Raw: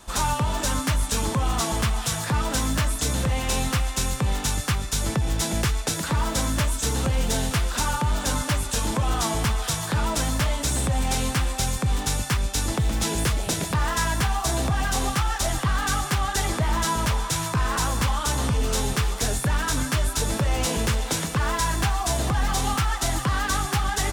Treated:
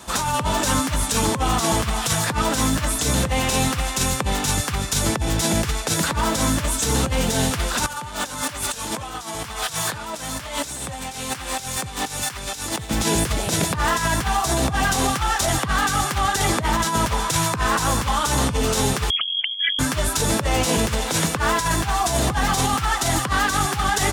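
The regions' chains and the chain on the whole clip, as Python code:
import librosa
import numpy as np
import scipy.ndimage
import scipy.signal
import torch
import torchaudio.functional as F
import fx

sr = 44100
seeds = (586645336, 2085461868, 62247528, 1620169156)

y = fx.chain(x, sr, fx.low_shelf(hz=410.0, db=-8.5),
    fx.over_compress(threshold_db=-33.0, ratio=-0.5),
    fx.clip_hard(threshold_db=-27.0), at=(7.86, 12.91))
y = fx.chain(y, sr, fx.envelope_sharpen(power=3.0),
    fx.hum_notches(base_hz=60, count=6),
    fx.freq_invert(carrier_hz=3300), at=(19.1, 19.79))
y = scipy.signal.sosfilt(scipy.signal.butter(2, 78.0, 'highpass', fs=sr, output='sos'), y)
y = fx.over_compress(y, sr, threshold_db=-26.0, ratio=-0.5)
y = F.gain(torch.from_numpy(y), 6.0).numpy()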